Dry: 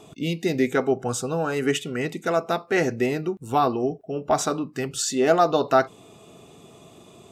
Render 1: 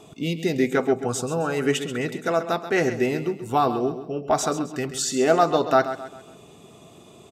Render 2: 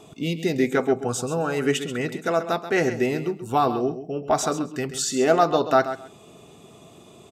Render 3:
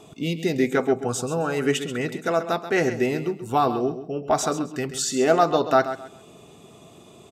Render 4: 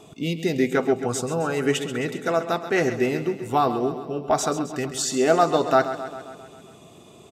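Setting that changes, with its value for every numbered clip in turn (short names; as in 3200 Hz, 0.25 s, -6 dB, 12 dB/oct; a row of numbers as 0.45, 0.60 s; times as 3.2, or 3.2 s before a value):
feedback echo, feedback: 40, 17, 25, 62%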